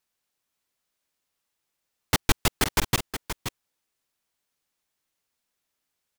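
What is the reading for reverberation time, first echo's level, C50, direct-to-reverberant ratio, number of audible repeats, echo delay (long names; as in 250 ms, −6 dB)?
no reverb audible, −9.5 dB, no reverb audible, no reverb audible, 1, 526 ms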